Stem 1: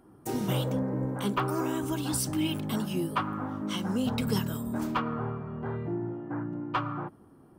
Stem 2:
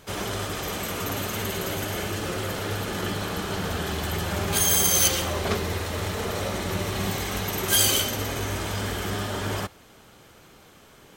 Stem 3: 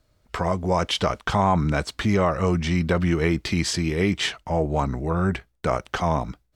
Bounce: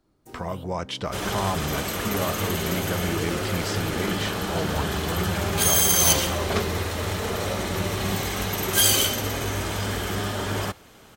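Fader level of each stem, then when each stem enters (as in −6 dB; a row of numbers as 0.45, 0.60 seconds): −14.0, +1.5, −7.5 decibels; 0.00, 1.05, 0.00 seconds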